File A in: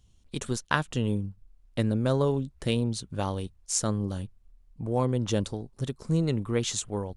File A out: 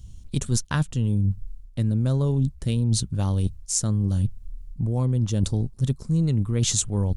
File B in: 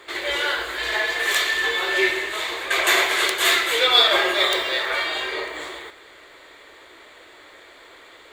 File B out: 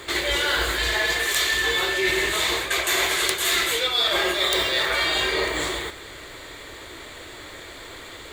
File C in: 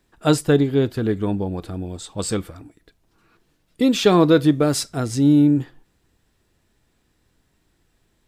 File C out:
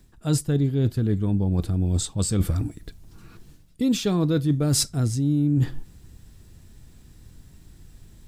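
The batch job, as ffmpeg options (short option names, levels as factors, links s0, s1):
-af "bass=f=250:g=15,treble=f=4000:g=8,areverse,acompressor=threshold=0.0631:ratio=10,areverse,volume=1.78"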